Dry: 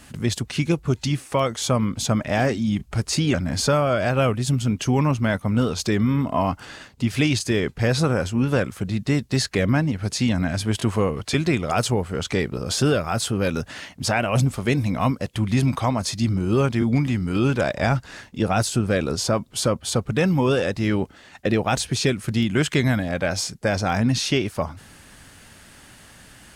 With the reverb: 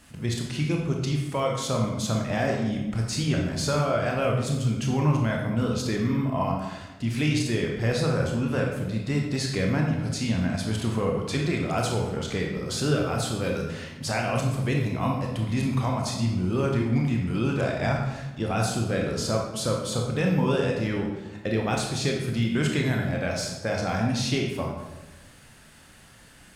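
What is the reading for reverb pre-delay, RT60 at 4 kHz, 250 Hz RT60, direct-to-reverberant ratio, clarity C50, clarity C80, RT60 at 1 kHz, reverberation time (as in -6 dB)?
22 ms, 0.75 s, 1.3 s, -0.5 dB, 3.0 dB, 5.5 dB, 1.0 s, 1.1 s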